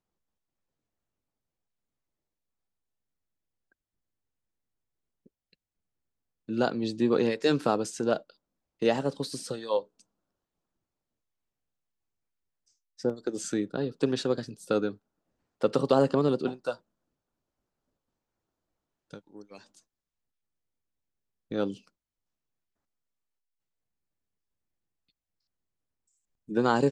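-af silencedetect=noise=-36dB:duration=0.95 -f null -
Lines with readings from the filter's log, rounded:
silence_start: 0.00
silence_end: 6.49 | silence_duration: 6.49
silence_start: 9.81
silence_end: 13.00 | silence_duration: 3.19
silence_start: 16.74
silence_end: 19.14 | silence_duration: 2.40
silence_start: 19.56
silence_end: 21.51 | silence_duration: 1.95
silence_start: 21.74
silence_end: 26.49 | silence_duration: 4.75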